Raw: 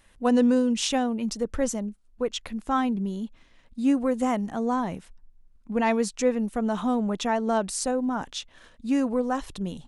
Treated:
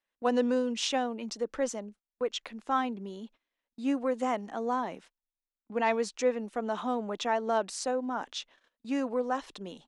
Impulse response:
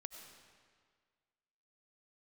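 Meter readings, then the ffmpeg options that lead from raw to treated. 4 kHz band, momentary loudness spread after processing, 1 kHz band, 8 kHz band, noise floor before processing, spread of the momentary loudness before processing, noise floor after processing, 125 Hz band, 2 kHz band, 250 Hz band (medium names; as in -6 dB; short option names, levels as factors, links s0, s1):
-3.0 dB, 12 LU, -2.5 dB, -7.0 dB, -58 dBFS, 11 LU, under -85 dBFS, under -10 dB, -2.5 dB, -9.0 dB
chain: -filter_complex "[0:a]acrossover=split=270 7000:gain=0.0891 1 0.178[s0][s1][s2];[s0][s1][s2]amix=inputs=3:normalize=0,agate=range=0.0794:threshold=0.00316:ratio=16:detection=peak,volume=0.75"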